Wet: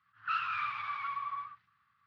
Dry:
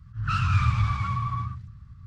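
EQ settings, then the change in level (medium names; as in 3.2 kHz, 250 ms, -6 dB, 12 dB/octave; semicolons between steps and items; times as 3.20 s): high-pass 1.4 kHz 12 dB/octave; distance through air 410 m; +2.5 dB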